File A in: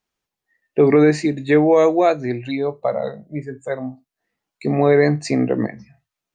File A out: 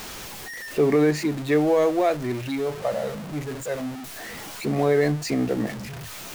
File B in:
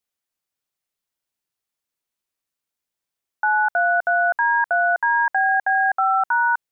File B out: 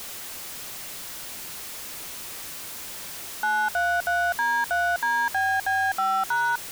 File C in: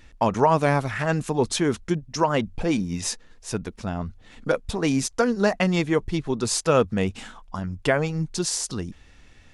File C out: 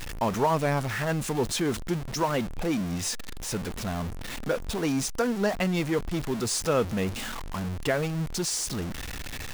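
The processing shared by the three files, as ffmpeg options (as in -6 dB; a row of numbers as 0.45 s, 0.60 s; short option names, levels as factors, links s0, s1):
-af "aeval=exprs='val(0)+0.5*0.0708*sgn(val(0))':c=same,volume=0.447"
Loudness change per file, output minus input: -6.0 LU, -7.5 LU, -4.5 LU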